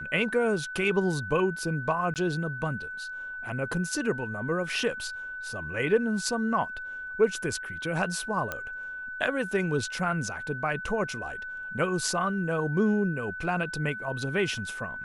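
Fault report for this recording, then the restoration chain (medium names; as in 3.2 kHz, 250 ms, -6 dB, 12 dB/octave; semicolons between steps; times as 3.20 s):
whine 1.5 kHz -35 dBFS
2.14–2.16 s: dropout 18 ms
8.52 s: pop -16 dBFS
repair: de-click; band-stop 1.5 kHz, Q 30; interpolate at 2.14 s, 18 ms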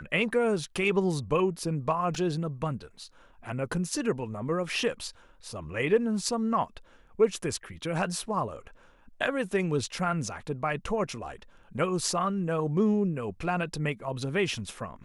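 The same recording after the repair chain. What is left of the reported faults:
nothing left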